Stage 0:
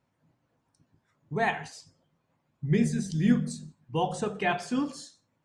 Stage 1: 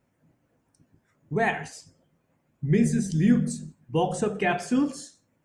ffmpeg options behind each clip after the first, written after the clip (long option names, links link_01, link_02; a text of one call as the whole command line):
ffmpeg -i in.wav -filter_complex "[0:a]equalizer=frequency=125:width_type=o:width=1:gain=-4,equalizer=frequency=1000:width_type=o:width=1:gain=-7,equalizer=frequency=4000:width_type=o:width=1:gain=-9,asplit=2[link_01][link_02];[link_02]alimiter=limit=-22.5dB:level=0:latency=1,volume=2dB[link_03];[link_01][link_03]amix=inputs=2:normalize=0" out.wav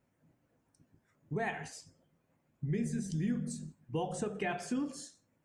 ffmpeg -i in.wav -af "acompressor=threshold=-29dB:ratio=2.5,volume=-5dB" out.wav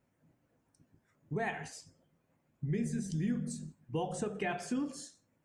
ffmpeg -i in.wav -af anull out.wav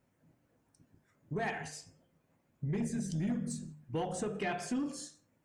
ffmpeg -i in.wav -af "bandreject=frequency=74.9:width_type=h:width=4,bandreject=frequency=149.8:width_type=h:width=4,bandreject=frequency=224.7:width_type=h:width=4,bandreject=frequency=299.6:width_type=h:width=4,bandreject=frequency=374.5:width_type=h:width=4,bandreject=frequency=449.4:width_type=h:width=4,bandreject=frequency=524.3:width_type=h:width=4,bandreject=frequency=599.2:width_type=h:width=4,bandreject=frequency=674.1:width_type=h:width=4,bandreject=frequency=749:width_type=h:width=4,bandreject=frequency=823.9:width_type=h:width=4,bandreject=frequency=898.8:width_type=h:width=4,bandreject=frequency=973.7:width_type=h:width=4,bandreject=frequency=1048.6:width_type=h:width=4,bandreject=frequency=1123.5:width_type=h:width=4,bandreject=frequency=1198.4:width_type=h:width=4,bandreject=frequency=1273.3:width_type=h:width=4,bandreject=frequency=1348.2:width_type=h:width=4,bandreject=frequency=1423.1:width_type=h:width=4,bandreject=frequency=1498:width_type=h:width=4,bandreject=frequency=1572.9:width_type=h:width=4,bandreject=frequency=1647.8:width_type=h:width=4,bandreject=frequency=1722.7:width_type=h:width=4,bandreject=frequency=1797.6:width_type=h:width=4,bandreject=frequency=1872.5:width_type=h:width=4,bandreject=frequency=1947.4:width_type=h:width=4,bandreject=frequency=2022.3:width_type=h:width=4,bandreject=frequency=2097.2:width_type=h:width=4,bandreject=frequency=2172.1:width_type=h:width=4,bandreject=frequency=2247:width_type=h:width=4,bandreject=frequency=2321.9:width_type=h:width=4,bandreject=frequency=2396.8:width_type=h:width=4,bandreject=frequency=2471.7:width_type=h:width=4,bandreject=frequency=2546.6:width_type=h:width=4,bandreject=frequency=2621.5:width_type=h:width=4,bandreject=frequency=2696.4:width_type=h:width=4,bandreject=frequency=2771.3:width_type=h:width=4,bandreject=frequency=2846.2:width_type=h:width=4,bandreject=frequency=2921.1:width_type=h:width=4,aeval=exprs='0.0668*sin(PI/2*1.41*val(0)/0.0668)':channel_layout=same,volume=-5dB" out.wav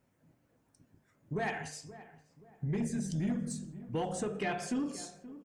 ffmpeg -i in.wav -filter_complex "[0:a]asplit=2[link_01][link_02];[link_02]adelay=527,lowpass=frequency=1200:poles=1,volume=-15dB,asplit=2[link_03][link_04];[link_04]adelay=527,lowpass=frequency=1200:poles=1,volume=0.4,asplit=2[link_05][link_06];[link_06]adelay=527,lowpass=frequency=1200:poles=1,volume=0.4,asplit=2[link_07][link_08];[link_08]adelay=527,lowpass=frequency=1200:poles=1,volume=0.4[link_09];[link_01][link_03][link_05][link_07][link_09]amix=inputs=5:normalize=0,volume=1dB" out.wav